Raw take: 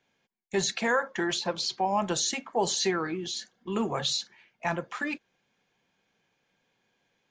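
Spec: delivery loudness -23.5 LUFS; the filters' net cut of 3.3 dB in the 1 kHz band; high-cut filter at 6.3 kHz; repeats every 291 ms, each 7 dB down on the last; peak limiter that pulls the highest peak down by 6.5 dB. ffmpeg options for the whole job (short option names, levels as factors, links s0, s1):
-af "lowpass=6300,equalizer=f=1000:t=o:g=-4.5,alimiter=limit=0.0794:level=0:latency=1,aecho=1:1:291|582|873|1164|1455:0.447|0.201|0.0905|0.0407|0.0183,volume=2.66"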